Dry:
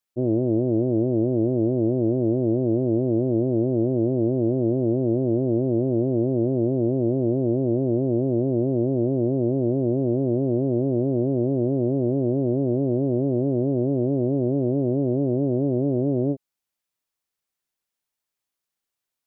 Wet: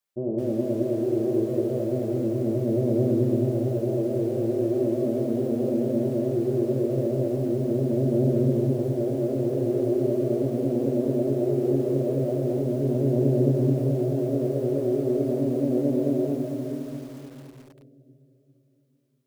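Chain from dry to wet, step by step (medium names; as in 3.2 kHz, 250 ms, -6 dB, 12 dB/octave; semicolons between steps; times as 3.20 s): hum notches 60/120/180/240/300/360 Hz; 5.80–8.45 s: bass shelf 340 Hz +3.5 dB; peak limiter -18 dBFS, peak gain reduction 7.5 dB; reverberation RT60 2.9 s, pre-delay 5 ms, DRR -0.5 dB; bit-crushed delay 216 ms, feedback 55%, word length 7-bit, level -8 dB; trim -2.5 dB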